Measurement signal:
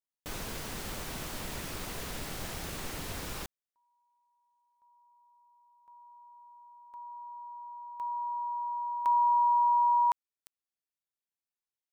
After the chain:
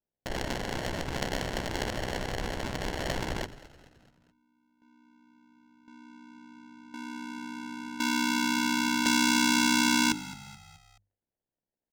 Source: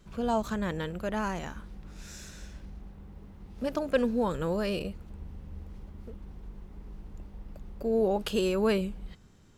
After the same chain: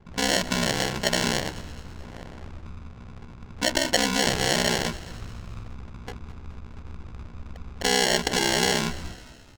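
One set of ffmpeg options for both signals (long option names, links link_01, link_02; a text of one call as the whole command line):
ffmpeg -i in.wav -filter_complex "[0:a]aresample=16000,acrusher=samples=13:mix=1:aa=0.000001,aresample=44100,highshelf=frequency=4400:gain=-3.5,acompressor=threshold=-35dB:ratio=4:attack=36:release=27:knee=1:detection=peak,crystalizer=i=8.5:c=0,adynamicsmooth=sensitivity=4.5:basefreq=1200,aeval=exprs='val(0)*sin(2*PI*32*n/s)':channel_layout=same,bandreject=frequency=50:width_type=h:width=6,bandreject=frequency=100:width_type=h:width=6,bandreject=frequency=150:width_type=h:width=6,bandreject=frequency=200:width_type=h:width=6,bandreject=frequency=250:width_type=h:width=6,bandreject=frequency=300:width_type=h:width=6,bandreject=frequency=350:width_type=h:width=6,bandreject=frequency=400:width_type=h:width=6,bandreject=frequency=450:width_type=h:width=6,asplit=2[link_01][link_02];[link_02]asplit=4[link_03][link_04][link_05][link_06];[link_03]adelay=214,afreqshift=-50,volume=-17.5dB[link_07];[link_04]adelay=428,afreqshift=-100,volume=-23.3dB[link_08];[link_05]adelay=642,afreqshift=-150,volume=-29.2dB[link_09];[link_06]adelay=856,afreqshift=-200,volume=-35dB[link_10];[link_07][link_08][link_09][link_10]amix=inputs=4:normalize=0[link_11];[link_01][link_11]amix=inputs=2:normalize=0,volume=8dB" -ar 48000 -c:a libmp3lame -b:a 320k out.mp3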